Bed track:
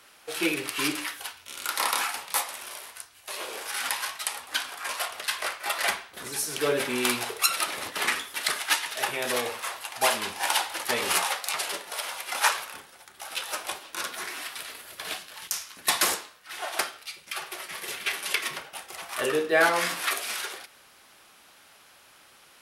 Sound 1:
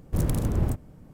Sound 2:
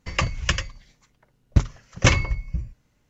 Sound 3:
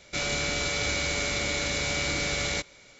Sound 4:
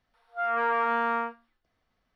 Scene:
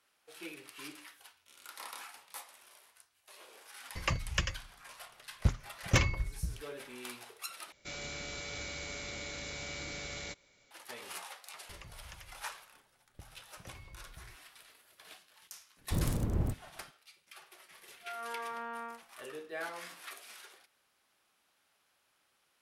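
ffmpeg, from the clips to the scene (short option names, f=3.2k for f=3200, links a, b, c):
-filter_complex "[2:a]asplit=2[a][b];[0:a]volume=-19.5dB[c];[a]volume=8dB,asoftclip=hard,volume=-8dB[d];[b]acompressor=threshold=-32dB:ratio=6:attack=3.2:release=140:knee=1:detection=peak[e];[1:a]agate=range=-33dB:threshold=-42dB:ratio=3:release=100:detection=peak[f];[c]asplit=2[g][h];[g]atrim=end=7.724[i];[3:a]atrim=end=2.99,asetpts=PTS-STARTPTS,volume=-13.5dB[j];[h]atrim=start=10.706[k];[d]atrim=end=3.09,asetpts=PTS-STARTPTS,volume=-9dB,afade=t=in:d=0.004:c=hsin,afade=t=out:st=3.086:d=0.004:c=hsin,adelay=171549S[l];[e]atrim=end=3.09,asetpts=PTS-STARTPTS,volume=-16dB,afade=t=in:d=0.004:c=hsin,afade=t=out:st=3.086:d=0.004:c=hsin,adelay=11630[m];[f]atrim=end=1.13,asetpts=PTS-STARTPTS,volume=-7dB,afade=t=in:d=0.004:c=hsin,afade=t=out:st=1.126:d=0.004:c=hsin,adelay=15780[n];[4:a]atrim=end=2.15,asetpts=PTS-STARTPTS,volume=-15dB,afade=t=in:d=0.004:c=hsin,afade=t=out:st=2.146:d=0.004:c=hsin,adelay=17680[o];[i][j]acrossfade=d=0.004:c1=hsin:c2=hsin[p];[p][k]acrossfade=d=0.004:c1=hsin:c2=hsin[q];[q][l][m][n][o]amix=inputs=5:normalize=0"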